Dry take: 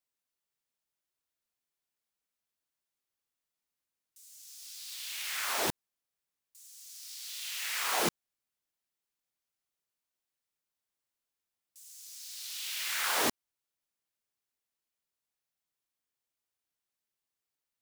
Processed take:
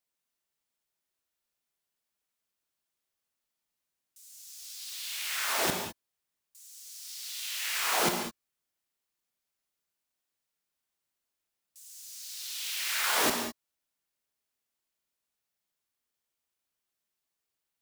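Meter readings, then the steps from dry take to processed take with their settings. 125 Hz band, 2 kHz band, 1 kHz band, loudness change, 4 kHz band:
+3.0 dB, +3.0 dB, +3.0 dB, +2.5 dB, +3.0 dB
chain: reverb whose tail is shaped and stops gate 230 ms flat, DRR 3.5 dB
level +1.5 dB

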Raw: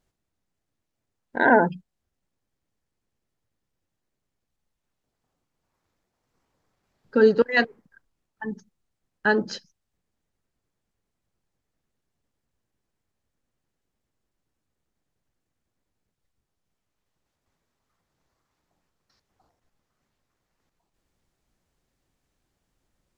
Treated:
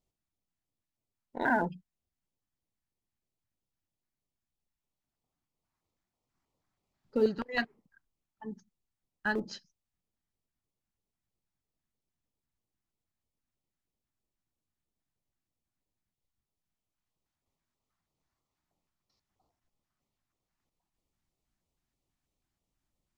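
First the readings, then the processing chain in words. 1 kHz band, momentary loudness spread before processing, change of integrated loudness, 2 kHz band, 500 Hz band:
−10.0 dB, 17 LU, −11.0 dB, −10.5 dB, −12.0 dB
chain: auto-filter notch square 3.1 Hz 480–1,600 Hz
in parallel at −9 dB: comparator with hysteresis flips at −18 dBFS
on the sum: level −9 dB

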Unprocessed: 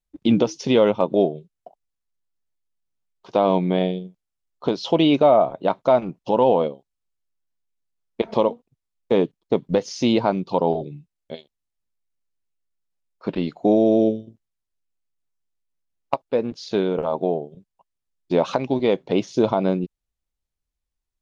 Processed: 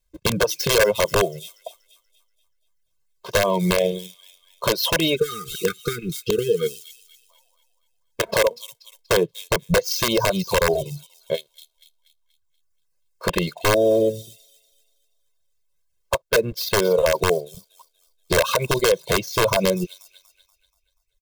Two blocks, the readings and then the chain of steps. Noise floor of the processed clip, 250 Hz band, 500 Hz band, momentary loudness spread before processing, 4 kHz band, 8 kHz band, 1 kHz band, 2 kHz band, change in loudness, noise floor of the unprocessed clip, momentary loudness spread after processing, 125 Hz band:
−69 dBFS, −6.5 dB, −0.5 dB, 12 LU, +8.0 dB, can't be measured, −2.0 dB, +12.0 dB, −0.5 dB, −83 dBFS, 11 LU, +1.5 dB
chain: gap after every zero crossing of 0.054 ms
high-shelf EQ 3,200 Hz +4.5 dB
delay with a high-pass on its return 240 ms, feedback 43%, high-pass 4,400 Hz, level −4 dB
downward compressor 8 to 1, threshold −18 dBFS, peak gain reduction 8 dB
time-frequency box erased 0:05.15–0:07.30, 480–1,200 Hz
dynamic equaliser 530 Hz, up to +4 dB, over −42 dBFS, Q 7.3
reverb reduction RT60 1 s
wrap-around overflow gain 14.5 dB
comb filter 1.9 ms, depth 99%
brickwall limiter −16 dBFS, peak gain reduction 7.5 dB
level +6.5 dB

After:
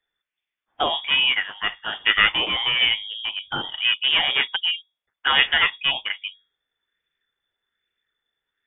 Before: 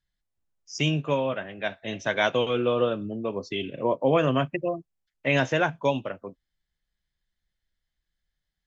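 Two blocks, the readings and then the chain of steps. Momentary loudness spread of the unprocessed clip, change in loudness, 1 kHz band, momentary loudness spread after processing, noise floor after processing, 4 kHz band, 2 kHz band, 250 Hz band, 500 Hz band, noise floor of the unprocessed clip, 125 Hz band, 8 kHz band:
10 LU, +6.0 dB, +2.0 dB, 11 LU, below −85 dBFS, +17.0 dB, +10.0 dB, −13.0 dB, −12.0 dB, −84 dBFS, −15.5 dB, can't be measured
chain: parametric band 1,400 Hz +11 dB 2.5 octaves
mains-hum notches 50/100/150/200 Hz
asymmetric clip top −18 dBFS, bottom −3.5 dBFS
voice inversion scrambler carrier 3,500 Hz
auto-filter bell 1.2 Hz 690–2,500 Hz +7 dB
level −3 dB

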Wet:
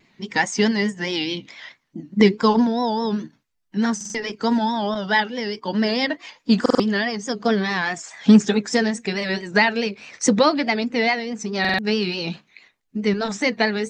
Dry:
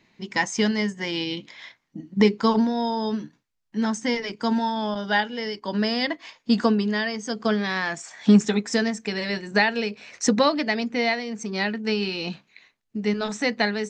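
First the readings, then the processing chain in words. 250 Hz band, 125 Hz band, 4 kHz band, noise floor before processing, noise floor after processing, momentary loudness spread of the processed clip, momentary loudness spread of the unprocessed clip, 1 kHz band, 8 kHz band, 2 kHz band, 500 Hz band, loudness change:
+3.0 dB, +2.5 dB, +2.5 dB, −73 dBFS, −68 dBFS, 11 LU, 11 LU, +3.5 dB, +3.5 dB, +3.5 dB, +3.5 dB, +3.0 dB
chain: spectral magnitudes quantised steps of 15 dB
pitch vibrato 4.7 Hz 97 cents
buffer that repeats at 0:03.96/0:06.61/0:11.60, samples 2,048, times 3
level +3.5 dB

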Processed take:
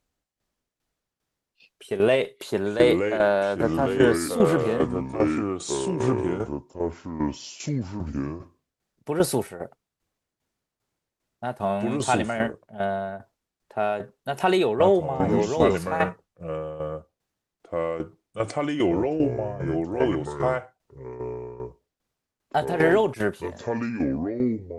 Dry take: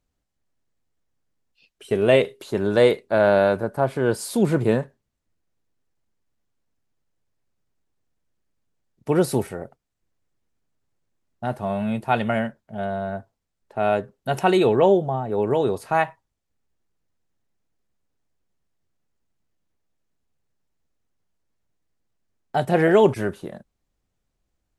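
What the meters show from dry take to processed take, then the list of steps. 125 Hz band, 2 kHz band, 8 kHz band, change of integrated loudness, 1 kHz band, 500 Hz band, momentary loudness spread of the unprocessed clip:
−1.0 dB, −0.5 dB, +3.5 dB, −3.5 dB, −1.5 dB, −1.5 dB, 14 LU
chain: low-shelf EQ 250 Hz −7 dB
brickwall limiter −12.5 dBFS, peak gain reduction 6.5 dB
harmonic generator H 4 −36 dB, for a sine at −12.5 dBFS
delay with pitch and tempo change per echo 378 ms, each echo −4 semitones, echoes 2
shaped tremolo saw down 2.5 Hz, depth 70%
level +4 dB

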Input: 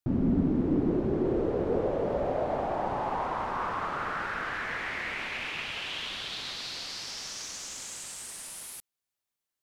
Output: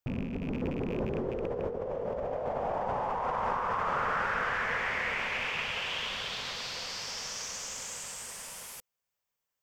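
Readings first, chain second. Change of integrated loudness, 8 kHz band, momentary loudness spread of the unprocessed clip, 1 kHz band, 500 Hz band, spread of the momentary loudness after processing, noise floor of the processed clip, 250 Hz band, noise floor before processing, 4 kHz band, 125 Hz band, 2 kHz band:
−1.5 dB, 0.0 dB, 11 LU, +0.5 dB, −3.0 dB, 8 LU, below −85 dBFS, −8.5 dB, below −85 dBFS, 0.0 dB, −5.0 dB, +2.0 dB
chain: loose part that buzzes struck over −28 dBFS, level −28 dBFS
thirty-one-band graphic EQ 315 Hz −12 dB, 500 Hz +6 dB, 1,000 Hz +3 dB, 4,000 Hz −7 dB, 10,000 Hz −11 dB
compressor whose output falls as the input rises −32 dBFS, ratio −1

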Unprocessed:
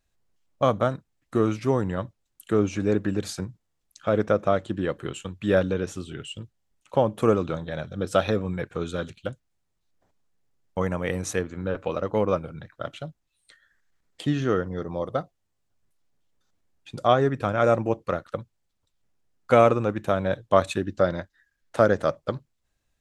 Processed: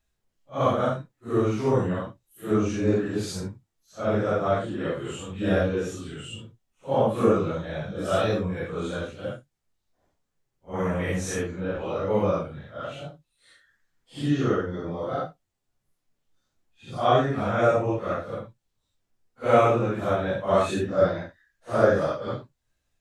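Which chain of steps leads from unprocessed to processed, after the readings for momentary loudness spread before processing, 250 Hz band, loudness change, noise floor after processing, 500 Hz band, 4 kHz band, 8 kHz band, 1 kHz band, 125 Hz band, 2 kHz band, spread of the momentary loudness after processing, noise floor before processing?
15 LU, 0.0 dB, −0.5 dB, −79 dBFS, −0.5 dB, 0.0 dB, 0.0 dB, 0.0 dB, +0.5 dB, 0.0 dB, 15 LU, −76 dBFS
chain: random phases in long frames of 200 ms

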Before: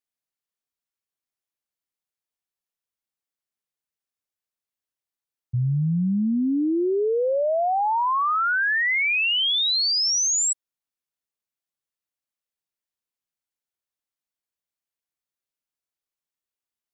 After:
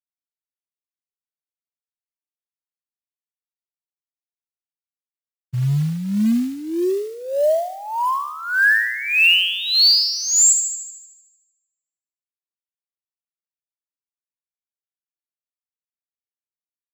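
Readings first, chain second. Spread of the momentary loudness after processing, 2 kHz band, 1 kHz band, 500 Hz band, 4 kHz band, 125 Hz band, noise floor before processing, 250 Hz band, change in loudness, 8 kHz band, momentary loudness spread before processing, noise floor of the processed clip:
13 LU, +5.5 dB, −2.5 dB, +1.5 dB, +5.0 dB, +2.5 dB, below −85 dBFS, +1.5 dB, +4.0 dB, can't be measured, 5 LU, below −85 dBFS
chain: rippled gain that drifts along the octave scale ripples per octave 0.83, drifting −0.68 Hz, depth 19 dB
graphic EQ with 15 bands 100 Hz −4 dB, 400 Hz −5 dB, 1,000 Hz −6 dB
log-companded quantiser 6 bits
delay with a high-pass on its return 76 ms, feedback 62%, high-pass 1,500 Hz, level −6.5 dB

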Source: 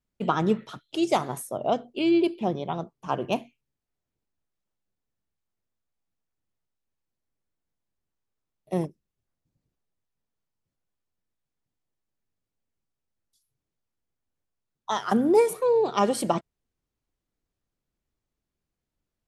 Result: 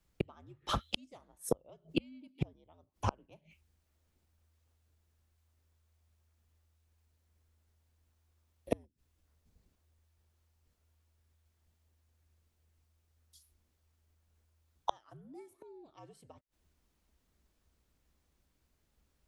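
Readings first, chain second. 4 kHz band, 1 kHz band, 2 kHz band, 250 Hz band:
−7.0 dB, −15.0 dB, −12.0 dB, −17.0 dB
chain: gate with flip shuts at −24 dBFS, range −41 dB
frequency shifter −80 Hz
level +9 dB

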